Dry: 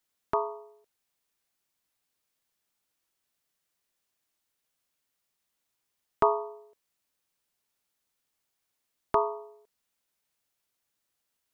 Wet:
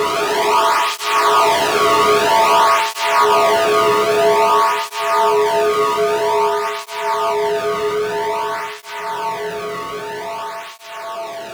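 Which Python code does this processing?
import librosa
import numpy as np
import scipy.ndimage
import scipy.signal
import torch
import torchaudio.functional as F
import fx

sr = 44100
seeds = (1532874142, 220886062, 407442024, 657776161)

y = fx.highpass(x, sr, hz=440.0, slope=6)
y = fx.notch(y, sr, hz=710.0, q=12.0)
y = fx.leveller(y, sr, passes=5)
y = fx.rev_schroeder(y, sr, rt60_s=1.8, comb_ms=25, drr_db=19.5)
y = fx.paulstretch(y, sr, seeds[0], factor=23.0, window_s=0.25, from_s=6.17)
y = fx.power_curve(y, sr, exponent=0.5)
y = fx.flanger_cancel(y, sr, hz=0.51, depth_ms=1.3)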